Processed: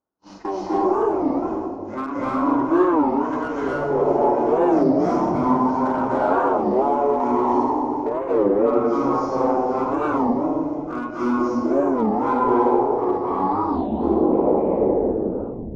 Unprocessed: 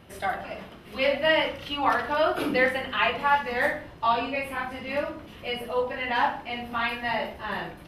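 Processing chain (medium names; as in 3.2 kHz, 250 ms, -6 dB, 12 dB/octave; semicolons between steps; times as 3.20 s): tape stop on the ending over 1.67 s; gate -41 dBFS, range -35 dB; tilt EQ +1.5 dB/octave; in parallel at -1.5 dB: peak limiter -18.5 dBFS, peak gain reduction 9 dB; on the sum: compression 16:1, threshold -25 dBFS, peak gain reduction 12.5 dB; Chebyshev shaper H 3 -16 dB, 4 -18 dB, 6 -31 dB, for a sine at -15.5 dBFS; hard clipper -22.5 dBFS, distortion -18 dB; high-order bell 980 Hz +12.5 dB 2.9 oct; on a send: feedback echo behind a high-pass 182 ms, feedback 52%, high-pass 3.6 kHz, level -15.5 dB; on the sum: plate-style reverb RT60 1.3 s, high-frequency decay 0.3×, pre-delay 115 ms, DRR -9.5 dB; speed mistake 15 ips tape played at 7.5 ips; warped record 33 1/3 rpm, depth 250 cents; trim -7 dB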